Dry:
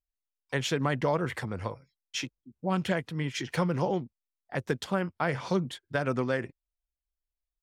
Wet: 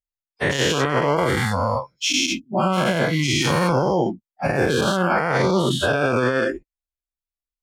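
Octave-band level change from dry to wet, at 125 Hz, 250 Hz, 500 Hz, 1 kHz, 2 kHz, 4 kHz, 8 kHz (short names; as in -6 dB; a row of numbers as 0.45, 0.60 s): +9.0, +9.5, +11.0, +12.0, +12.5, +14.5, +15.5 dB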